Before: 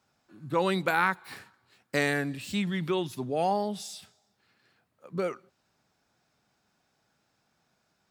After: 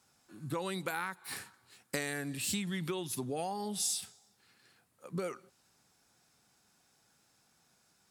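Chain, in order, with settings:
notch filter 620 Hz, Q 12
downward compressor 12 to 1, threshold −33 dBFS, peak gain reduction 14 dB
parametric band 10,000 Hz +13.5 dB 1.4 octaves

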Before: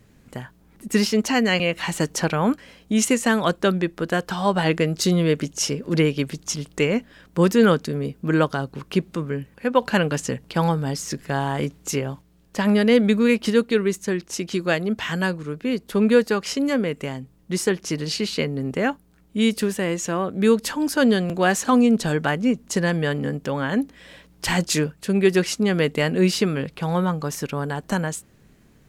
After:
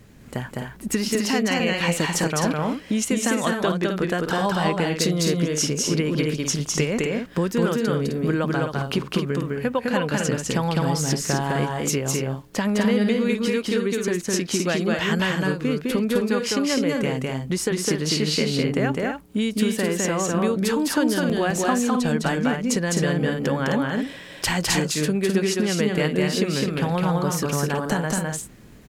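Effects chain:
downward compressor, threshold −26 dBFS, peak gain reduction 15 dB
on a send: loudspeakers that aren't time-aligned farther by 71 metres −2 dB, 89 metres −7 dB
on the sum: level +5 dB

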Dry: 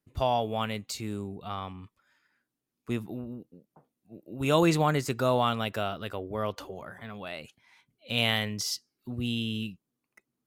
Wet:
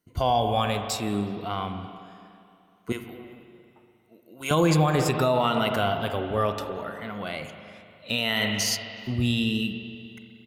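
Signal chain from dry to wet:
rippled gain that drifts along the octave scale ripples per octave 1.9, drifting +0.71 Hz, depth 10 dB
0:02.92–0:04.51: high-pass filter 1,500 Hz 6 dB per octave
far-end echo of a speakerphone 370 ms, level −25 dB
spring reverb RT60 2.6 s, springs 39/58 ms, chirp 45 ms, DRR 7 dB
brickwall limiter −17.5 dBFS, peak gain reduction 8.5 dB
level +5 dB

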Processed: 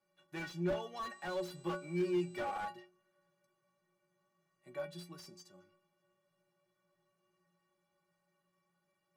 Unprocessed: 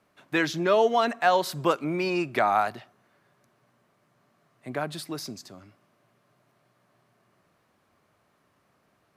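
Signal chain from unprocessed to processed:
0:01.09–0:02.63: hum with harmonics 400 Hz, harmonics 20, −52 dBFS −1 dB per octave
stiff-string resonator 170 Hz, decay 0.41 s, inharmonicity 0.03
slew-rate limiting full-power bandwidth 15 Hz

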